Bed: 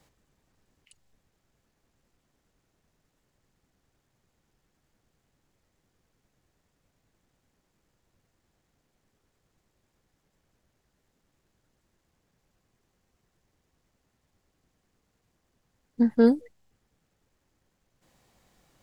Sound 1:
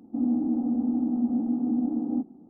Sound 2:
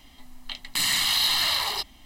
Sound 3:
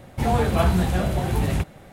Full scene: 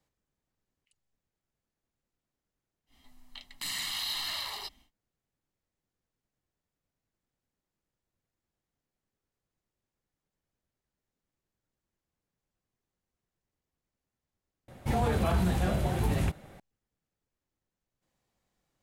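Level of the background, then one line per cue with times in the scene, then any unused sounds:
bed -15 dB
2.86 add 2 -11.5 dB, fades 0.10 s
14.68 replace with 3 -17.5 dB + maximiser +12 dB
not used: 1

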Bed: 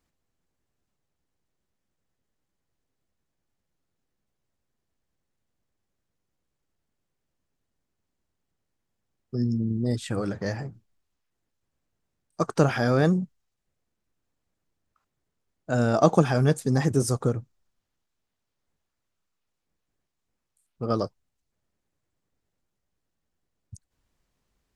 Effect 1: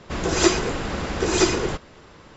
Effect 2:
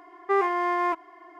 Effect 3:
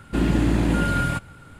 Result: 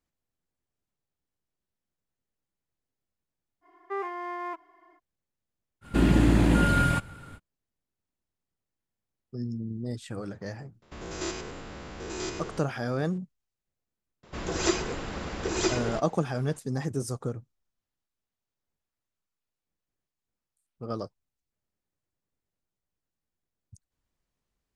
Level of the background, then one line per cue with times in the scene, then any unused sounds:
bed -8 dB
3.61 add 2 -10 dB, fades 0.05 s + steep high-pass 190 Hz
5.81 add 3 -0.5 dB, fades 0.05 s
10.82 add 1 -13 dB + stepped spectrum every 0.1 s
14.23 add 1 -8 dB

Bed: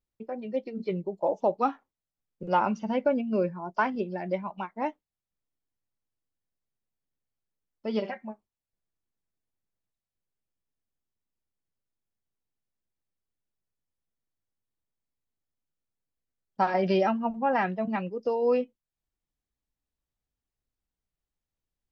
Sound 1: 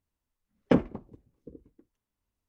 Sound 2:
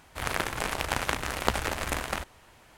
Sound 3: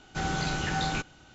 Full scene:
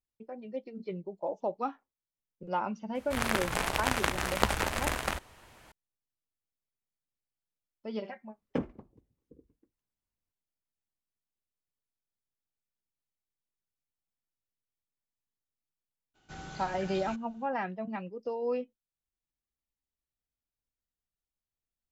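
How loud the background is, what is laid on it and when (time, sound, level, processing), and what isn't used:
bed -7.5 dB
2.95 add 2 -0.5 dB
7.84 add 1 -10 dB
16.14 add 3 -14.5 dB, fades 0.02 s

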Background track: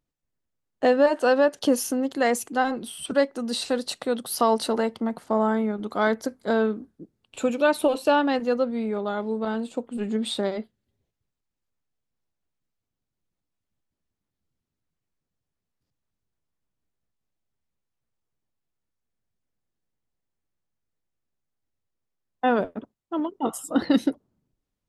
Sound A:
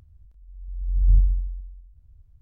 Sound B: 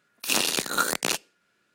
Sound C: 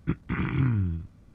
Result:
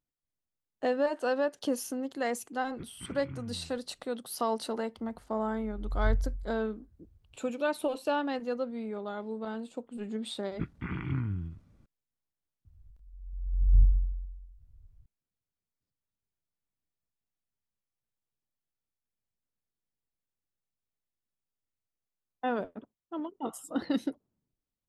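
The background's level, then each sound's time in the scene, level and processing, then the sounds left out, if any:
background track -9.5 dB
2.71 add C -18 dB
4.96 add A -2 dB + HPF 120 Hz 6 dB/oct
10.52 add C -7.5 dB
12.65 add A -3 dB + bell 69 Hz -4 dB
not used: B

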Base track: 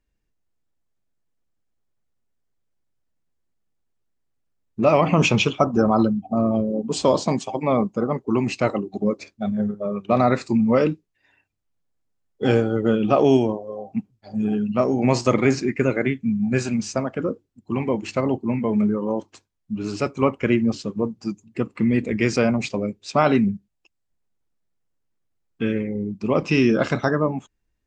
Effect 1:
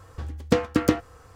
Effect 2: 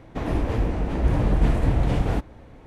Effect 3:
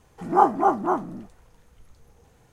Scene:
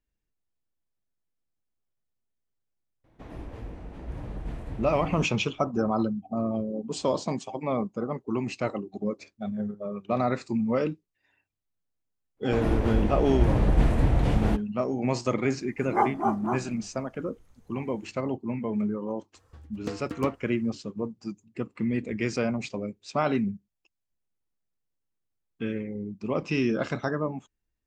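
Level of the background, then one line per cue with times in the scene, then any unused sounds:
base track -8 dB
3.04 add 2 -16 dB
12.36 add 2 -1.5 dB, fades 0.02 s + expander -33 dBFS
15.6 add 3 -7 dB
19.35 add 1 -15 dB

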